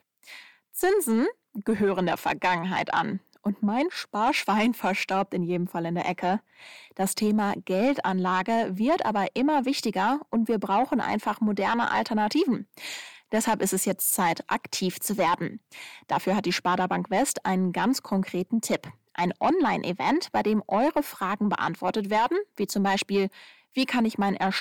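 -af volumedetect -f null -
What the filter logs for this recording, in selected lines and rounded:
mean_volume: -26.1 dB
max_volume: -15.4 dB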